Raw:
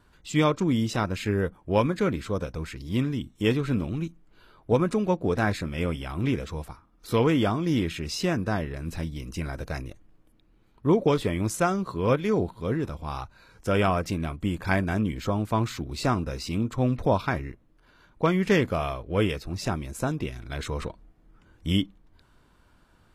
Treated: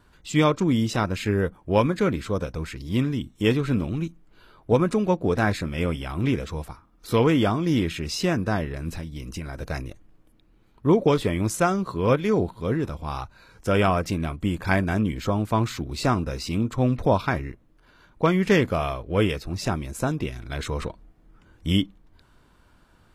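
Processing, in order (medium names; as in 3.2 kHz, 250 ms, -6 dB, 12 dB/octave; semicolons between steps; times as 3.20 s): 8.93–9.62 s: compression, threshold -32 dBFS, peak gain reduction 7 dB; trim +2.5 dB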